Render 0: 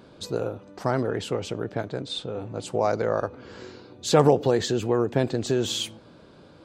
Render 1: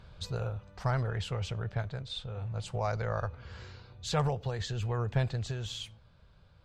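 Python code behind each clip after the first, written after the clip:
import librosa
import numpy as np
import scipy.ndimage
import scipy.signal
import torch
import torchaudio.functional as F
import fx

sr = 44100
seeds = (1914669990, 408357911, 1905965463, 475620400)

y = fx.tone_stack(x, sr, knobs='10-0-10')
y = fx.rider(y, sr, range_db=4, speed_s=0.5)
y = fx.riaa(y, sr, side='playback')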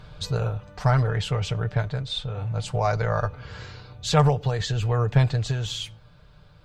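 y = x + 0.45 * np.pad(x, (int(6.7 * sr / 1000.0), 0))[:len(x)]
y = y * librosa.db_to_amplitude(8.0)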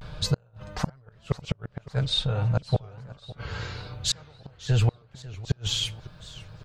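y = fx.vibrato(x, sr, rate_hz=0.51, depth_cents=68.0)
y = fx.gate_flip(y, sr, shuts_db=-17.0, range_db=-38)
y = fx.echo_warbled(y, sr, ms=553, feedback_pct=53, rate_hz=2.8, cents=190, wet_db=-18)
y = y * librosa.db_to_amplitude(4.5)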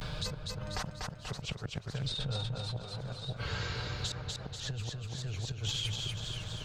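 y = fx.over_compress(x, sr, threshold_db=-29.0, ratio=-1.0)
y = fx.echo_feedback(y, sr, ms=242, feedback_pct=38, wet_db=-5)
y = fx.band_squash(y, sr, depth_pct=70)
y = y * librosa.db_to_amplitude(-6.0)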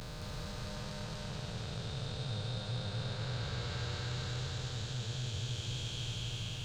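y = fx.spec_blur(x, sr, span_ms=1320.0)
y = y + 10.0 ** (-3.0 / 20.0) * np.pad(y, (int(217 * sr / 1000.0), 0))[:len(y)]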